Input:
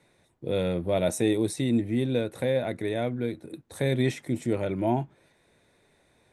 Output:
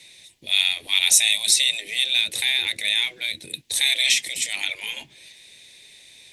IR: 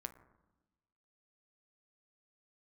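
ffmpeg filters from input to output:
-af "afftfilt=real='re*lt(hypot(re,im),0.0631)':imag='im*lt(hypot(re,im),0.0631)':win_size=1024:overlap=0.75,aemphasis=mode=reproduction:type=50kf,aexciter=amount=12.2:drive=9.2:freq=2.2k"

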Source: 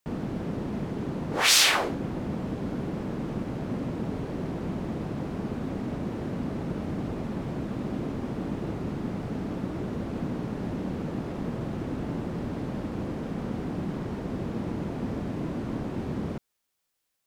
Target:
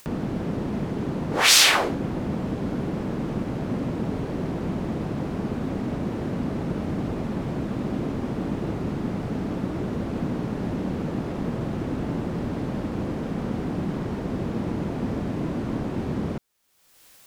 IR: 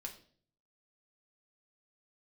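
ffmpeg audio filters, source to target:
-af "acompressor=mode=upward:threshold=-37dB:ratio=2.5,volume=4dB"

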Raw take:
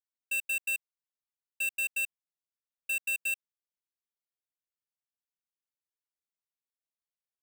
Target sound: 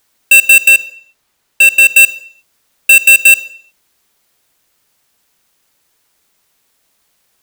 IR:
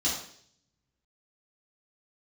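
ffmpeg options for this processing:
-filter_complex "[0:a]asettb=1/sr,asplit=3[a][b][c];[a]atrim=end=0.684[d];[b]atrim=start=0.68:end=1.9,asetpts=PTS-STARTPTS,afade=t=in:d=0.004:c=qsin,afade=t=out:st=1.216:d=0.004:c=qsin,highshelf=f=5.5k:g=-5.5[e];[c]atrim=start=1.896[f];[d][e]acrossfade=d=0.004:c1=hsin:c2=qsin[g];[g][f]acrossfade=d=0.004:c1=qsin:c2=hsin,asplit=2[h][i];[1:a]atrim=start_sample=2205,afade=t=out:st=0.43:d=0.01,atrim=end_sample=19404[j];[i][j]afir=irnorm=-1:irlink=0,volume=-27.5dB[k];[h][k]amix=inputs=2:normalize=0,alimiter=level_in=36dB:limit=-1dB:release=50:level=0:latency=1,volume=-1dB"

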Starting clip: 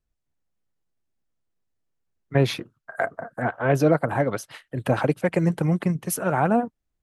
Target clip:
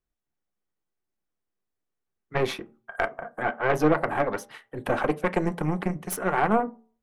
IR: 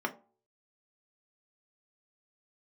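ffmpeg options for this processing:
-filter_complex "[0:a]aeval=exprs='0.473*(cos(1*acos(clip(val(0)/0.473,-1,1)))-cos(1*PI/2))+0.15*(cos(2*acos(clip(val(0)/0.473,-1,1)))-cos(2*PI/2))+0.0422*(cos(6*acos(clip(val(0)/0.473,-1,1)))-cos(6*PI/2))':c=same,asplit=2[a][b];[1:a]atrim=start_sample=2205[c];[b][c]afir=irnorm=-1:irlink=0,volume=-6.5dB[d];[a][d]amix=inputs=2:normalize=0,volume=-7dB"

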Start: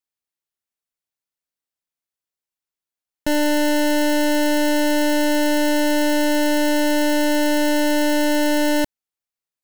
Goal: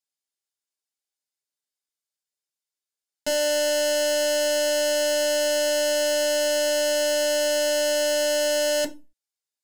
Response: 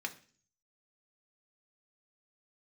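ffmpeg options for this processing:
-filter_complex "[0:a]equalizer=f=7.5k:w=1.1:g=7.5[a];[1:a]atrim=start_sample=2205,asetrate=88200,aresample=44100[b];[a][b]afir=irnorm=-1:irlink=0,volume=2.5dB"

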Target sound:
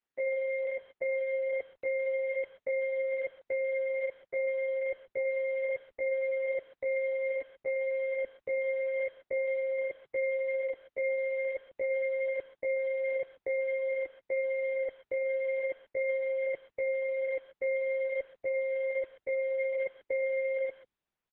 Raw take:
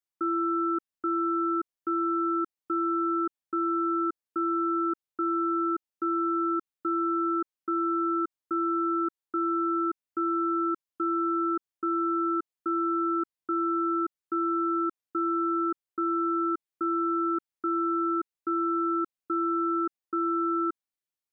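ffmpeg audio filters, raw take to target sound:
-filter_complex "[0:a]lowpass=f=1k:w=0.5412,lowpass=f=1k:w=1.3066,asubboost=boost=2.5:cutoff=230,acontrast=48,alimiter=limit=-23dB:level=0:latency=1:release=23,asetrate=70004,aresample=44100,atempo=0.629961,asplit=2[a][b];[b]adelay=140,highpass=300,lowpass=3.4k,asoftclip=type=hard:threshold=-31.5dB,volume=-20dB[c];[a][c]amix=inputs=2:normalize=0,volume=-2dB" -ar 48000 -c:a libopus -b:a 6k

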